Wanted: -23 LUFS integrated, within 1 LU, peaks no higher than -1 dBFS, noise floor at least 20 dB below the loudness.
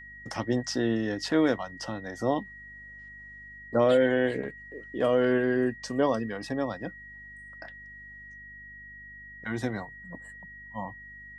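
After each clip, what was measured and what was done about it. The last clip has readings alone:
hum 50 Hz; harmonics up to 250 Hz; hum level -46 dBFS; steady tone 1900 Hz; tone level -44 dBFS; loudness -28.5 LUFS; peak -11.5 dBFS; loudness target -23.0 LUFS
-> de-hum 50 Hz, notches 5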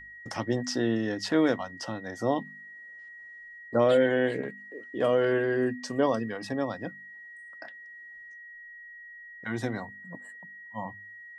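hum none; steady tone 1900 Hz; tone level -44 dBFS
-> notch 1900 Hz, Q 30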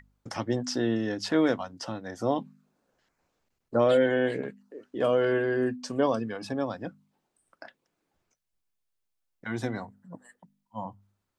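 steady tone none; loudness -28.0 LUFS; peak -11.5 dBFS; loudness target -23.0 LUFS
-> gain +5 dB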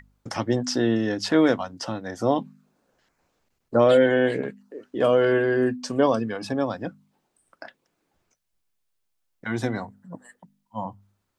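loudness -23.5 LUFS; peak -6.5 dBFS; noise floor -76 dBFS

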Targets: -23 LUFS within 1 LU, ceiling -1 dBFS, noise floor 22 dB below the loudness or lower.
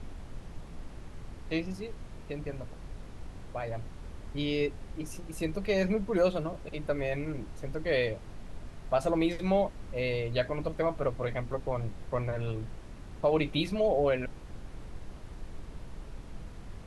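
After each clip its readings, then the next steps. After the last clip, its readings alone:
noise floor -46 dBFS; noise floor target -54 dBFS; loudness -32.0 LUFS; peak -14.5 dBFS; loudness target -23.0 LUFS
-> noise print and reduce 8 dB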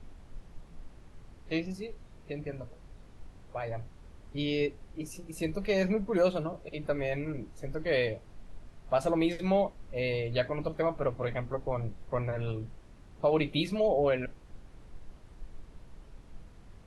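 noise floor -54 dBFS; loudness -32.0 LUFS; peak -15.0 dBFS; loudness target -23.0 LUFS
-> gain +9 dB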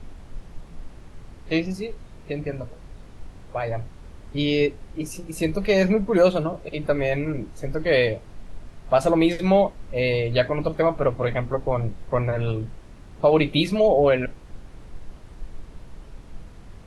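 loudness -23.0 LUFS; peak -6.0 dBFS; noise floor -45 dBFS

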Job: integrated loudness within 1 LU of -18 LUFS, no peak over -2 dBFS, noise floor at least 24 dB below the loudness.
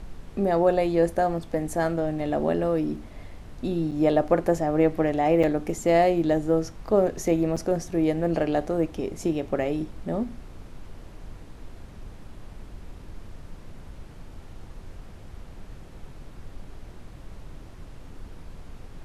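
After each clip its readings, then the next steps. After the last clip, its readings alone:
dropouts 3; longest dropout 6.0 ms; noise floor -44 dBFS; noise floor target -49 dBFS; loudness -24.5 LUFS; peak -7.5 dBFS; loudness target -18.0 LUFS
-> interpolate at 3.91/5.43/7.56, 6 ms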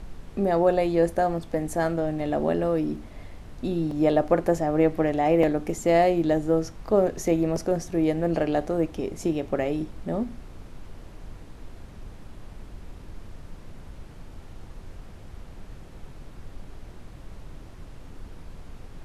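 dropouts 0; noise floor -44 dBFS; noise floor target -49 dBFS
-> noise print and reduce 6 dB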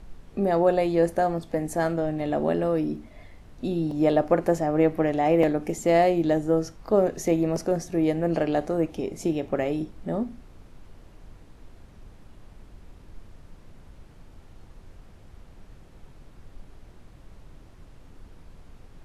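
noise floor -50 dBFS; loudness -24.5 LUFS; peak -7.5 dBFS; loudness target -18.0 LUFS
-> gain +6.5 dB; limiter -2 dBFS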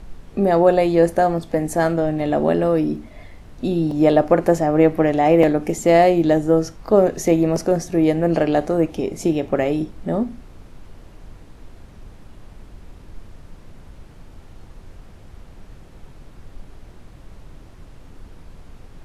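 loudness -18.5 LUFS; peak -2.0 dBFS; noise floor -44 dBFS

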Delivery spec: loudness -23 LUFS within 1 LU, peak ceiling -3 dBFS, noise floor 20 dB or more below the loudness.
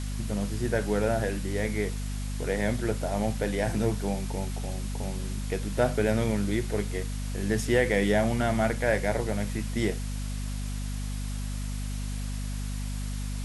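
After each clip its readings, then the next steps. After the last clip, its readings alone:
hum 50 Hz; harmonics up to 250 Hz; hum level -30 dBFS; noise floor -32 dBFS; noise floor target -50 dBFS; loudness -29.5 LUFS; peak -10.5 dBFS; loudness target -23.0 LUFS
-> notches 50/100/150/200/250 Hz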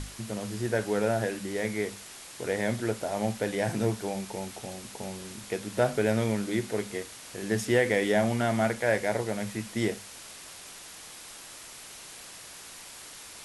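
hum none; noise floor -46 dBFS; noise floor target -50 dBFS
-> denoiser 6 dB, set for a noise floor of -46 dBFS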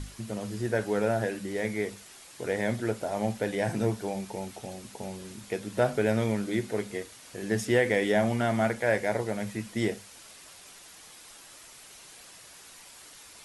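noise floor -51 dBFS; loudness -29.5 LUFS; peak -10.5 dBFS; loudness target -23.0 LUFS
-> gain +6.5 dB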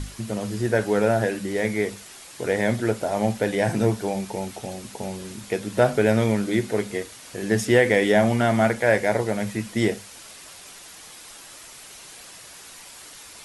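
loudness -23.0 LUFS; peak -4.0 dBFS; noise floor -44 dBFS

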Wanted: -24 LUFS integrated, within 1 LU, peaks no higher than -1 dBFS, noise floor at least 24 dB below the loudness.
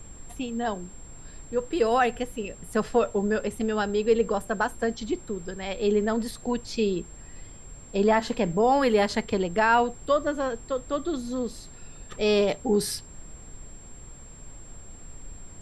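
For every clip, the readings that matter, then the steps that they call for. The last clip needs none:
steady tone 7500 Hz; tone level -48 dBFS; noise floor -46 dBFS; noise floor target -50 dBFS; loudness -26.0 LUFS; peak -9.5 dBFS; loudness target -24.0 LUFS
-> notch 7500 Hz, Q 30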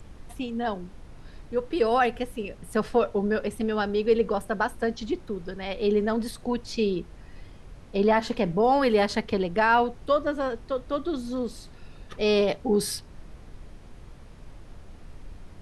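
steady tone none; noise floor -47 dBFS; noise floor target -51 dBFS
-> noise print and reduce 6 dB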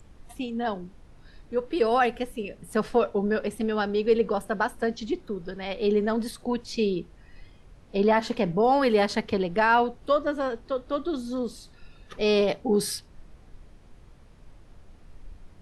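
noise floor -53 dBFS; loudness -26.5 LUFS; peak -9.5 dBFS; loudness target -24.0 LUFS
-> gain +2.5 dB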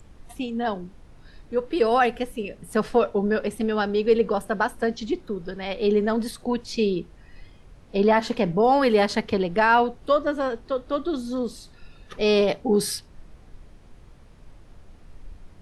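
loudness -24.0 LUFS; peak -7.0 dBFS; noise floor -50 dBFS

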